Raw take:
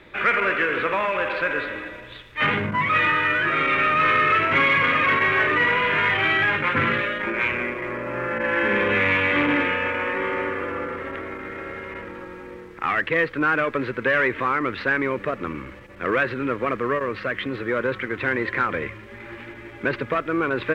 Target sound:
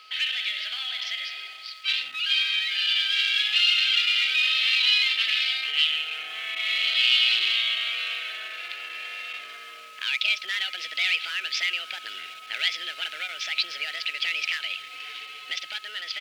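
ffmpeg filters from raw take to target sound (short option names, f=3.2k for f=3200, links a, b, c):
-filter_complex "[0:a]equalizer=f=3k:w=0.53:g=10,acrossover=split=1900[a][b];[a]acompressor=threshold=-31dB:ratio=6[c];[c][b]amix=inputs=2:normalize=0,aeval=exprs='val(0)+0.0158*sin(2*PI*1000*n/s)':c=same,asplit=2[d][e];[e]adelay=722,lowpass=f=2k:p=1,volume=-17.5dB,asplit=2[f][g];[g]adelay=722,lowpass=f=2k:p=1,volume=0.44,asplit=2[h][i];[i]adelay=722,lowpass=f=2k:p=1,volume=0.44,asplit=2[j][k];[k]adelay=722,lowpass=f=2k:p=1,volume=0.44[l];[d][f][h][j][l]amix=inputs=5:normalize=0,dynaudnorm=f=600:g=17:m=11.5dB,asetrate=56448,aresample=44100,aderivative"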